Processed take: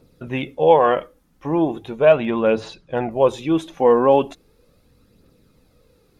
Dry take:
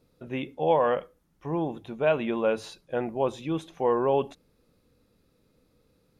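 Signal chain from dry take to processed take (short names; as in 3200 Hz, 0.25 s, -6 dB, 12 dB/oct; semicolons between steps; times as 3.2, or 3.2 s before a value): 2.05–3.11 air absorption 98 m; phaser 0.38 Hz, delay 4.1 ms, feedback 39%; gain +8 dB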